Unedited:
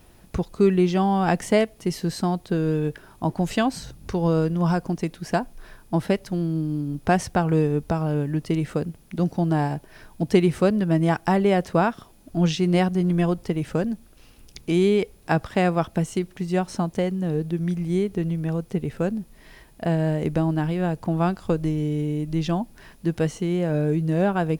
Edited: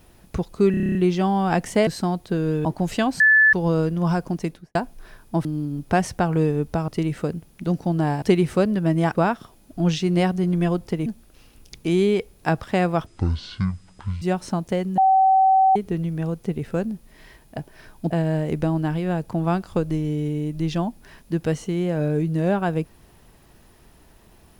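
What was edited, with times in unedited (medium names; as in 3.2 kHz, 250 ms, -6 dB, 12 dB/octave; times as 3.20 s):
0.71 s: stutter 0.03 s, 9 plays
1.63–2.07 s: delete
2.85–3.24 s: delete
3.79–4.12 s: bleep 1.74 kHz -11 dBFS
5.05–5.34 s: studio fade out
6.04–6.61 s: delete
8.04–8.40 s: delete
9.74–10.27 s: move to 19.84 s
11.20–11.72 s: delete
13.63–13.89 s: delete
15.89–16.48 s: speed 51%
17.24–18.02 s: bleep 765 Hz -12.5 dBFS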